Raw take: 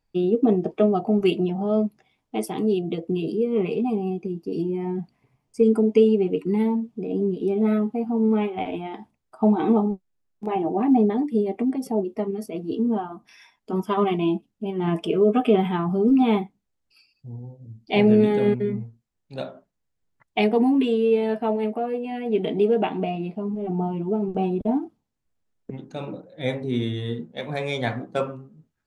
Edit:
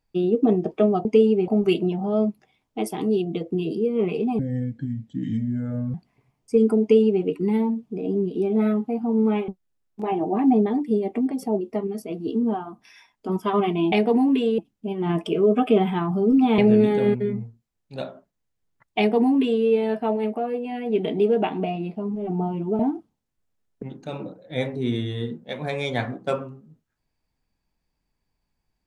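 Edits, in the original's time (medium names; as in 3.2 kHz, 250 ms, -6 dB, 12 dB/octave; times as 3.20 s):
3.96–5.00 s: speed 67%
5.87–6.30 s: copy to 1.05 s
8.54–9.92 s: delete
16.36–17.98 s: delete
20.38–21.04 s: copy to 14.36 s
24.19–24.67 s: delete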